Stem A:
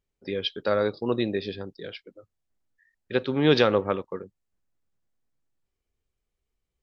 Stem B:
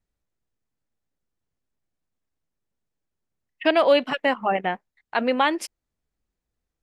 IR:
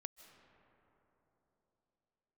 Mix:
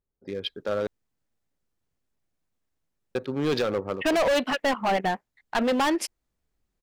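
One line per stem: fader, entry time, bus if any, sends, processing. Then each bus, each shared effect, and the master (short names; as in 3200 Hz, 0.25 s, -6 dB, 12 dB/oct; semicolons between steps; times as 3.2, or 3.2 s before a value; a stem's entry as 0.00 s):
-3.0 dB, 0.00 s, muted 0.87–3.15, no send, Wiener smoothing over 15 samples
+2.5 dB, 0.40 s, no send, dry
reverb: off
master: overloaded stage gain 20 dB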